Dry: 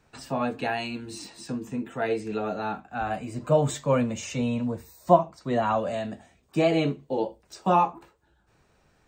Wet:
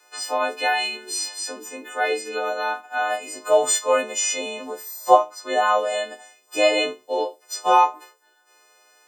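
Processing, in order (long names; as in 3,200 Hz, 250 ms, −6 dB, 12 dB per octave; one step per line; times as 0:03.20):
every partial snapped to a pitch grid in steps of 3 semitones
high-pass filter 400 Hz 24 dB per octave
level +5 dB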